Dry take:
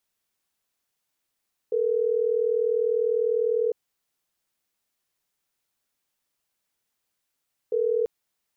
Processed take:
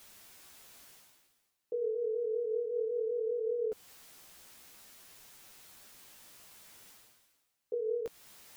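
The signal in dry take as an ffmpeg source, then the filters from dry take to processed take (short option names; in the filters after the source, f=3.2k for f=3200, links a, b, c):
-f lavfi -i "aevalsrc='0.0668*(sin(2*PI*440*t)+sin(2*PI*480*t))*clip(min(mod(t,6),2-mod(t,6))/0.005,0,1)':d=6.34:s=44100"
-af "areverse,acompressor=mode=upward:threshold=-30dB:ratio=2.5,areverse,alimiter=level_in=0.5dB:limit=-24dB:level=0:latency=1:release=207,volume=-0.5dB,flanger=delay=7.9:depth=9.7:regen=2:speed=0.56:shape=triangular"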